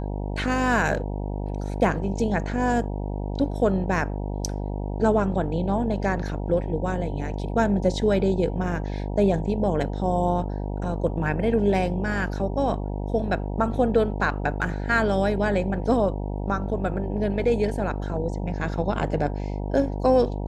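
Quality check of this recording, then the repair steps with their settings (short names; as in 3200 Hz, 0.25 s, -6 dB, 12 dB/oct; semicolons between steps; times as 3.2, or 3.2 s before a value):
buzz 50 Hz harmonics 19 -29 dBFS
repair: de-hum 50 Hz, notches 19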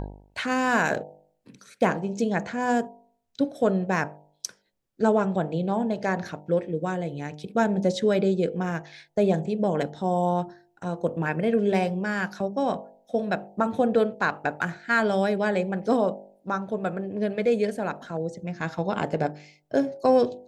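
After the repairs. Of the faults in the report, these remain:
none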